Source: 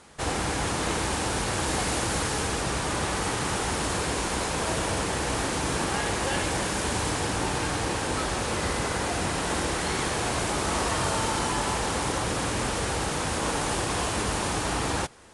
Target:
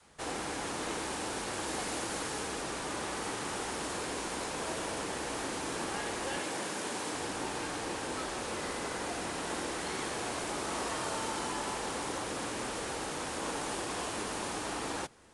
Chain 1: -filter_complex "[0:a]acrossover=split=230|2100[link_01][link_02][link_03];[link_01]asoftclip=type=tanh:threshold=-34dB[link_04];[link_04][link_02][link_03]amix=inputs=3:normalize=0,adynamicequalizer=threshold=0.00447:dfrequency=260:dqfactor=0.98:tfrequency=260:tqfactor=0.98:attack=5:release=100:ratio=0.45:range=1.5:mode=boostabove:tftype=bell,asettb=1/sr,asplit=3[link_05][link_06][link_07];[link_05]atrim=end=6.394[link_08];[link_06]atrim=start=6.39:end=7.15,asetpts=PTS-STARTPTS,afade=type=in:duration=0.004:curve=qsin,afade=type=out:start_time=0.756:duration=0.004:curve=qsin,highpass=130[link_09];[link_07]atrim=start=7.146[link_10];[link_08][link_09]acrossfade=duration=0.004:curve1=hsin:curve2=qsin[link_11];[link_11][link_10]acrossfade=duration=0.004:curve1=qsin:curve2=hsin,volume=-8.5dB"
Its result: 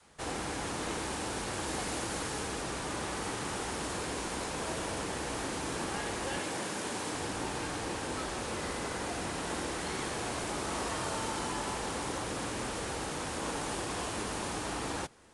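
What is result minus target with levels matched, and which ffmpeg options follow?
soft clipping: distortion −6 dB
-filter_complex "[0:a]acrossover=split=230|2100[link_01][link_02][link_03];[link_01]asoftclip=type=tanh:threshold=-43dB[link_04];[link_04][link_02][link_03]amix=inputs=3:normalize=0,adynamicequalizer=threshold=0.00447:dfrequency=260:dqfactor=0.98:tfrequency=260:tqfactor=0.98:attack=5:release=100:ratio=0.45:range=1.5:mode=boostabove:tftype=bell,asettb=1/sr,asplit=3[link_05][link_06][link_07];[link_05]atrim=end=6.394[link_08];[link_06]atrim=start=6.39:end=7.15,asetpts=PTS-STARTPTS,afade=type=in:duration=0.004:curve=qsin,afade=type=out:start_time=0.756:duration=0.004:curve=qsin,highpass=130[link_09];[link_07]atrim=start=7.146[link_10];[link_08][link_09]acrossfade=duration=0.004:curve1=hsin:curve2=qsin[link_11];[link_11][link_10]acrossfade=duration=0.004:curve1=qsin:curve2=hsin,volume=-8.5dB"

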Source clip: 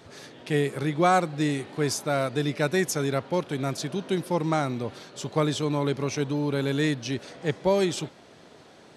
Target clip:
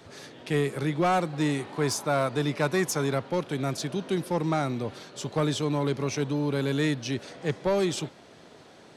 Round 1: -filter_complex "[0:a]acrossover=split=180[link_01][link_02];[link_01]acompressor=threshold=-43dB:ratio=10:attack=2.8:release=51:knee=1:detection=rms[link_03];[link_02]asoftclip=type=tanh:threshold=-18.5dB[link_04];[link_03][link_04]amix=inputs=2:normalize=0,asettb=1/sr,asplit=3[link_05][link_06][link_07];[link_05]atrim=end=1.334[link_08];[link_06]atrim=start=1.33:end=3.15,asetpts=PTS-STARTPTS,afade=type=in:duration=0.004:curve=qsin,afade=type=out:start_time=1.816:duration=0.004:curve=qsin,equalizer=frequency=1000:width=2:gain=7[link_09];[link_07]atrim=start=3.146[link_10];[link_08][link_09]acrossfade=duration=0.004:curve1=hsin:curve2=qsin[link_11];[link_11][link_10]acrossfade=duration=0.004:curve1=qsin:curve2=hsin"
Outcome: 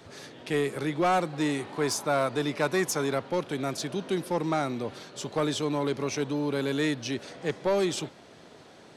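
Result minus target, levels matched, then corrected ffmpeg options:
downward compressor: peak gain reduction +14.5 dB
-filter_complex "[0:a]acrossover=split=180[link_01][link_02];[link_02]asoftclip=type=tanh:threshold=-18.5dB[link_03];[link_01][link_03]amix=inputs=2:normalize=0,asettb=1/sr,asplit=3[link_04][link_05][link_06];[link_04]atrim=end=1.334[link_07];[link_05]atrim=start=1.33:end=3.15,asetpts=PTS-STARTPTS,afade=type=in:duration=0.004:curve=qsin,afade=type=out:start_time=1.816:duration=0.004:curve=qsin,equalizer=frequency=1000:width=2:gain=7[link_08];[link_06]atrim=start=3.146[link_09];[link_07][link_08]acrossfade=duration=0.004:curve1=hsin:curve2=qsin[link_10];[link_10][link_09]acrossfade=duration=0.004:curve1=qsin:curve2=hsin"

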